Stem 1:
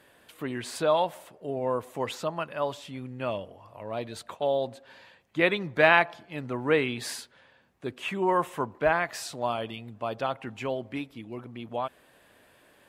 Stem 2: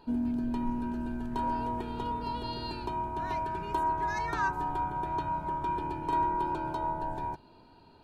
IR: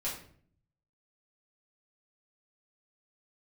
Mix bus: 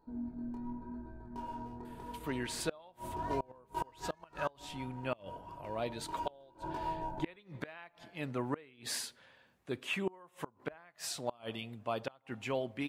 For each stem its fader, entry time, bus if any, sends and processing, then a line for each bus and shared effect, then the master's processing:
−4.5 dB, 1.85 s, send −22 dB, high-shelf EQ 2,500 Hz +3 dB
0:02.88 −8 dB → 0:03.14 −0.5 dB → 0:03.96 −0.5 dB → 0:04.71 −13 dB → 0:05.86 −13 dB → 0:06.59 −2 dB, 0.00 s, no send, adaptive Wiener filter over 15 samples; high-shelf EQ 5,700 Hz +7 dB; chorus effect 0.86 Hz, delay 18.5 ms, depth 7.3 ms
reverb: on, RT60 0.55 s, pre-delay 4 ms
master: gate with flip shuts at −22 dBFS, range −28 dB

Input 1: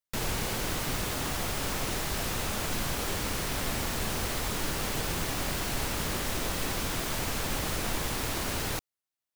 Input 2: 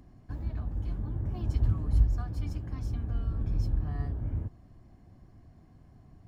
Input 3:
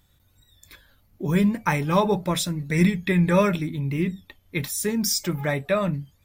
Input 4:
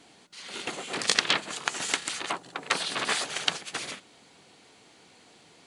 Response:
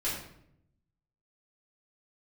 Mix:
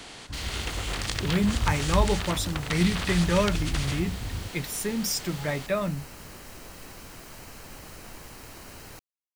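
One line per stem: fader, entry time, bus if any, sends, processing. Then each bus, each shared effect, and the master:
−12.5 dB, 0.20 s, no send, notch filter 3,500 Hz, Q 7.7
−1.5 dB, 0.00 s, no send, no processing
−4.5 dB, 0.00 s, no send, no processing
−3.0 dB, 0.00 s, no send, compressor on every frequency bin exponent 0.6; downward compressor 2.5 to 1, threshold −29 dBFS, peak gain reduction 10 dB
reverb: not used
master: no processing

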